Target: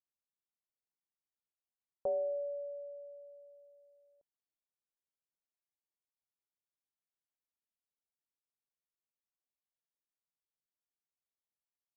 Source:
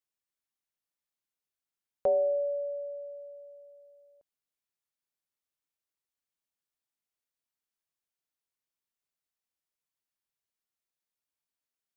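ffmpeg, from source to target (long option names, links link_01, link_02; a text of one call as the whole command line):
ffmpeg -i in.wav -af "lowpass=frequency=1100:width=0.5412,lowpass=frequency=1100:width=1.3066,volume=-8dB" out.wav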